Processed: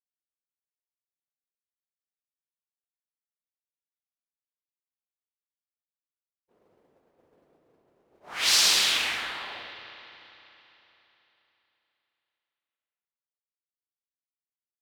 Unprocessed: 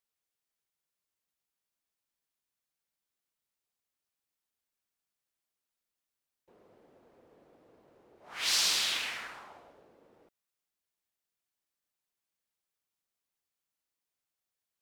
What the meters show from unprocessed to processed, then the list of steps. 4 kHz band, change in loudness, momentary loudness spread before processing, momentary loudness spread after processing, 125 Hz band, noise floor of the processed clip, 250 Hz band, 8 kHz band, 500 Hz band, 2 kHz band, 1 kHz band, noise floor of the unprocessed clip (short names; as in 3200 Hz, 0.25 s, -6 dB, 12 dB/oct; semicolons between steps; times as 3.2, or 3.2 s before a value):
+7.5 dB, +6.5 dB, 19 LU, 22 LU, n/a, under -85 dBFS, +7.0 dB, +7.0 dB, +7.0 dB, +8.0 dB, +7.5 dB, under -85 dBFS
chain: expander -53 dBFS; spring tank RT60 3.6 s, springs 33/56 ms, chirp 40 ms, DRR 7 dB; gain +7 dB